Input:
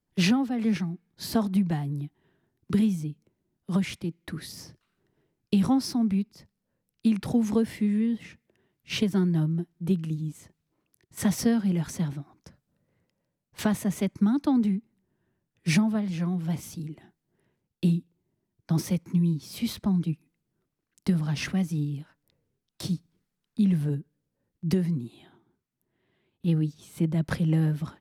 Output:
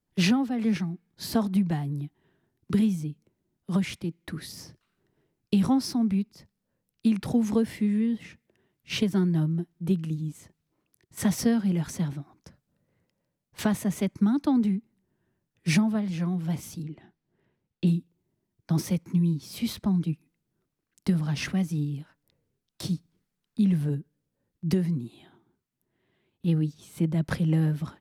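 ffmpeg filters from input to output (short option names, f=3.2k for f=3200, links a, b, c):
-filter_complex "[0:a]asettb=1/sr,asplit=3[a][b][c];[a]atrim=end=16.834[d];[b]atrim=start=16.83:end=17.87,asetpts=PTS-STARTPTS,afade=t=in:d=0.004:c=qsin,afade=t=out:st=1.036:d=0.004:c=qsin,lowpass=4.6k[e];[c]atrim=start=17.866[f];[d][e]acrossfade=d=0.004:c1=hsin:c2=qsin[g];[g][f]acrossfade=d=0.004:c1=qsin:c2=hsin"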